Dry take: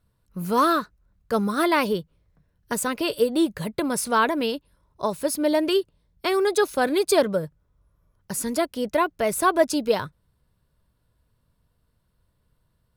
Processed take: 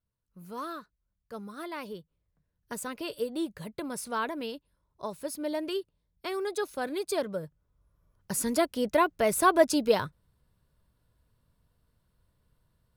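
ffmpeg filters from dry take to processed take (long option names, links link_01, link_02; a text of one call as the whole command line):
ffmpeg -i in.wav -af "volume=-2dB,afade=type=in:start_time=1.73:duration=1:silence=0.446684,afade=type=in:start_time=7.27:duration=1.07:silence=0.354813" out.wav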